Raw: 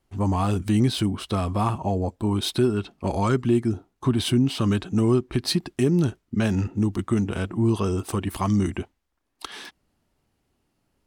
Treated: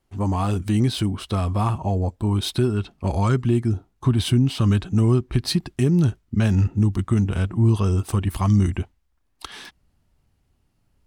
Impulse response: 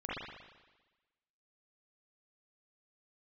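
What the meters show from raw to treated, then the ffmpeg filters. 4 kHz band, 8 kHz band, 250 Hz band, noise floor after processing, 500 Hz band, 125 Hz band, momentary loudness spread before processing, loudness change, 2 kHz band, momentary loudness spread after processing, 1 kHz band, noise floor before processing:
0.0 dB, 0.0 dB, +0.5 dB, −68 dBFS, −1.5 dB, +5.5 dB, 8 LU, +2.5 dB, 0.0 dB, 7 LU, −0.5 dB, −74 dBFS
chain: -af "asubboost=boost=3:cutoff=160"

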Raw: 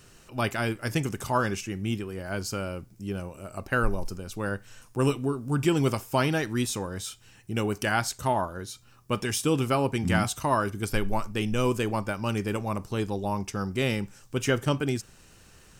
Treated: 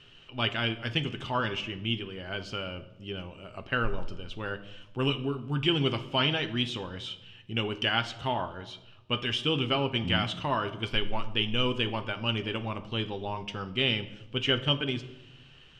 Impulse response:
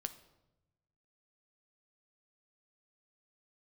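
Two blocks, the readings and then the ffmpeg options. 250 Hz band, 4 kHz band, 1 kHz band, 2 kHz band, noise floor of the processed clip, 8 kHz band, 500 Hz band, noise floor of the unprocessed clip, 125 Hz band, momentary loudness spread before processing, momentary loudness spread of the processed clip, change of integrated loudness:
−4.5 dB, +9.0 dB, −4.0 dB, −0.5 dB, −54 dBFS, −18.5 dB, −4.5 dB, −55 dBFS, −3.5 dB, 10 LU, 13 LU, −1.5 dB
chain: -filter_complex "[0:a]lowpass=frequency=3100:width_type=q:width=6.8[link_01];[1:a]atrim=start_sample=2205[link_02];[link_01][link_02]afir=irnorm=-1:irlink=0,volume=-3dB"

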